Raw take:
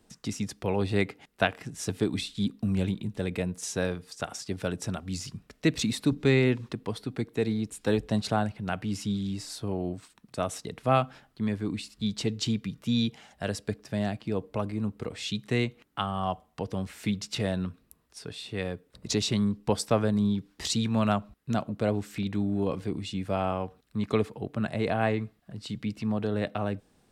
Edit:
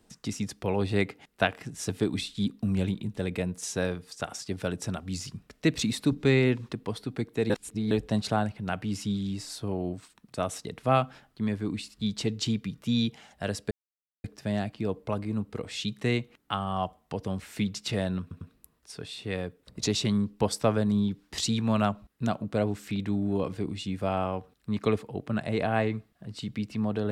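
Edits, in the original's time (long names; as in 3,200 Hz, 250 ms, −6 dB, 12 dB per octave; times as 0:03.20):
0:07.50–0:07.91: reverse
0:13.71: splice in silence 0.53 s
0:17.68: stutter 0.10 s, 3 plays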